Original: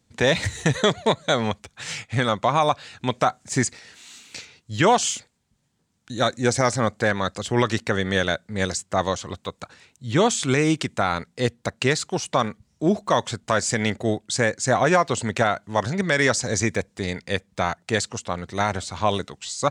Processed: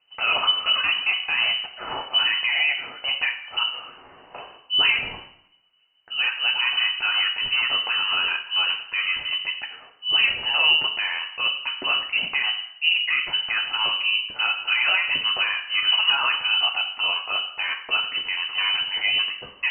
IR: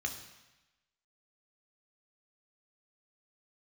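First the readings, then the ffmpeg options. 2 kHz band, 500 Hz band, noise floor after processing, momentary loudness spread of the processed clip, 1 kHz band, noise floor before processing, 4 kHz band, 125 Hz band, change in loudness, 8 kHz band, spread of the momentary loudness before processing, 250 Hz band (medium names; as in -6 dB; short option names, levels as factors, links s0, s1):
+5.0 dB, -19.5 dB, -53 dBFS, 8 LU, -7.0 dB, -68 dBFS, +11.5 dB, under -25 dB, +2.0 dB, under -40 dB, 10 LU, -25.0 dB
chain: -filter_complex "[0:a]alimiter=limit=0.133:level=0:latency=1:release=20[s0];[1:a]atrim=start_sample=2205,asetrate=66150,aresample=44100[s1];[s0][s1]afir=irnorm=-1:irlink=0,lowpass=f=2600:t=q:w=0.5098,lowpass=f=2600:t=q:w=0.6013,lowpass=f=2600:t=q:w=0.9,lowpass=f=2600:t=q:w=2.563,afreqshift=-3100,volume=2.24"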